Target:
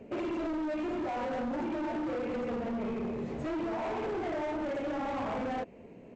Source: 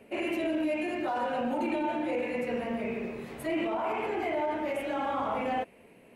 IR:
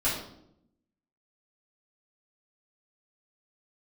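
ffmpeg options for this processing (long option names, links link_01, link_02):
-af "equalizer=frequency=2800:width=0.32:gain=-14,acompressor=threshold=-37dB:ratio=2.5,aresample=16000,asoftclip=type=hard:threshold=-40dB,aresample=44100,volume=8.5dB"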